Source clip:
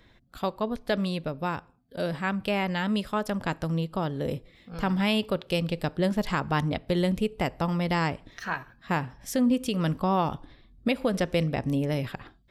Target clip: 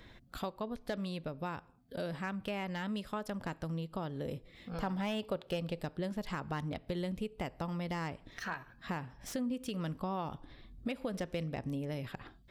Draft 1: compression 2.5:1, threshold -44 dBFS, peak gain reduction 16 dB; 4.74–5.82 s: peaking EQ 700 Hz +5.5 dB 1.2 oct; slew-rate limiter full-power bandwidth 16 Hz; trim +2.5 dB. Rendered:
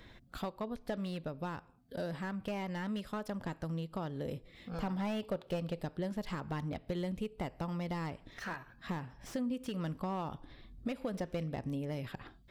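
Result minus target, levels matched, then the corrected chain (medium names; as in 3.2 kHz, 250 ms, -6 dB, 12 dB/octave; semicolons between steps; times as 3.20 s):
slew-rate limiter: distortion +10 dB
compression 2.5:1, threshold -44 dBFS, peak gain reduction 16 dB; 4.74–5.82 s: peaking EQ 700 Hz +5.5 dB 1.2 oct; slew-rate limiter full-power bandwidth 39 Hz; trim +2.5 dB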